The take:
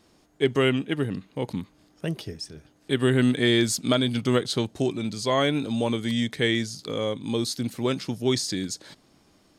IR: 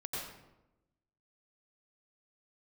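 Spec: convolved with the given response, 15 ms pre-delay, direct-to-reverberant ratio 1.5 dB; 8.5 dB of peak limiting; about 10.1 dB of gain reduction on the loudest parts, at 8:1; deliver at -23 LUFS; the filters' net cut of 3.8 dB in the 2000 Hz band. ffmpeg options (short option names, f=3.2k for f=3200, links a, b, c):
-filter_complex "[0:a]equalizer=f=2k:t=o:g=-4.5,acompressor=threshold=-27dB:ratio=8,alimiter=level_in=1.5dB:limit=-24dB:level=0:latency=1,volume=-1.5dB,asplit=2[a][b];[1:a]atrim=start_sample=2205,adelay=15[c];[b][c]afir=irnorm=-1:irlink=0,volume=-3dB[d];[a][d]amix=inputs=2:normalize=0,volume=10.5dB"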